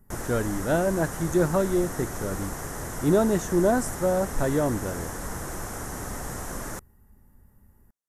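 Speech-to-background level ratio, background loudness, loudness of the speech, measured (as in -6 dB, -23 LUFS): 8.5 dB, -34.5 LUFS, -26.0 LUFS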